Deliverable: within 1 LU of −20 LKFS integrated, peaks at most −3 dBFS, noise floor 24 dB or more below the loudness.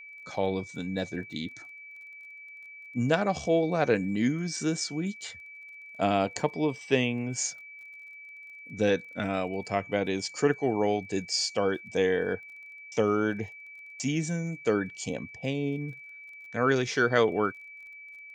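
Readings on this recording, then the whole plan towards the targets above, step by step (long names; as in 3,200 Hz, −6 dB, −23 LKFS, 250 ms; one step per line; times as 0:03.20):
crackle rate 25 per second; interfering tone 2,300 Hz; level of the tone −44 dBFS; integrated loudness −29.0 LKFS; sample peak −8.5 dBFS; target loudness −20.0 LKFS
→ click removal
notch filter 2,300 Hz, Q 30
level +9 dB
brickwall limiter −3 dBFS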